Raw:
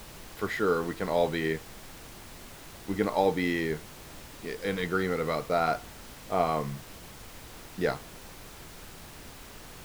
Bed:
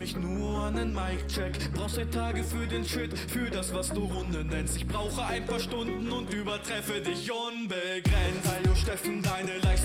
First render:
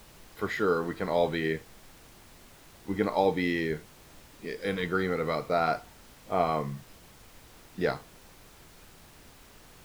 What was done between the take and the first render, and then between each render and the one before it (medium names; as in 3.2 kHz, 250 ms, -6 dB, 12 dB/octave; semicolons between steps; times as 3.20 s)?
noise print and reduce 7 dB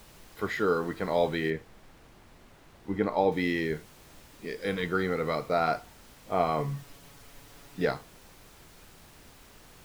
1.50–3.32 s: treble shelf 3.8 kHz -11 dB; 6.58–7.85 s: comb 7.1 ms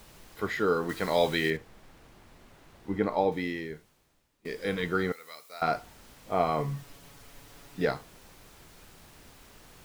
0.89–1.57 s: treble shelf 2.2 kHz +10.5 dB; 3.14–4.45 s: fade out quadratic, to -22 dB; 5.12–5.62 s: differentiator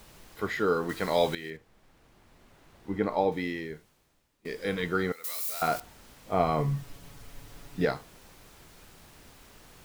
1.35–3.16 s: fade in linear, from -14 dB; 5.24–5.80 s: zero-crossing glitches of -29.5 dBFS; 6.33–7.85 s: bass shelf 180 Hz +8 dB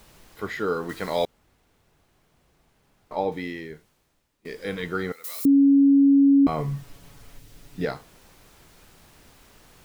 1.25–3.11 s: room tone; 5.45–6.47 s: bleep 278 Hz -12.5 dBFS; 7.37–7.90 s: peaking EQ 1 kHz -10 dB -> -1.5 dB 1.9 oct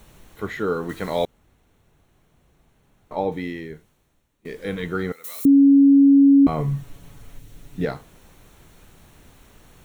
bass shelf 330 Hz +6 dB; band-stop 4.9 kHz, Q 5.1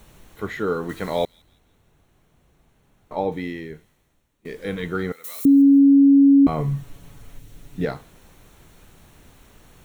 feedback echo behind a high-pass 167 ms, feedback 37%, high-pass 3 kHz, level -20 dB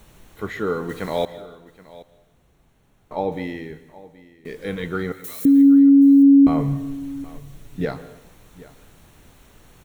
delay 774 ms -19.5 dB; plate-style reverb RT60 0.94 s, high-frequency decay 0.9×, pre-delay 110 ms, DRR 15 dB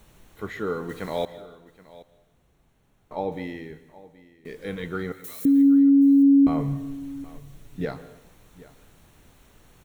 trim -4.5 dB